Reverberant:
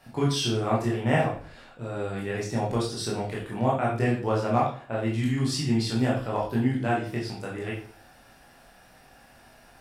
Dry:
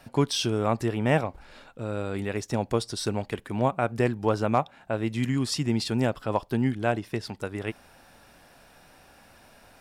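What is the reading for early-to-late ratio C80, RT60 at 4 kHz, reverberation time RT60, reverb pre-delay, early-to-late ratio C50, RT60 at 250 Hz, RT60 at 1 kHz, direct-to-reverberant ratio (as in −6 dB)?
10.0 dB, 0.40 s, 0.50 s, 16 ms, 5.0 dB, 0.55 s, 0.45 s, −5.5 dB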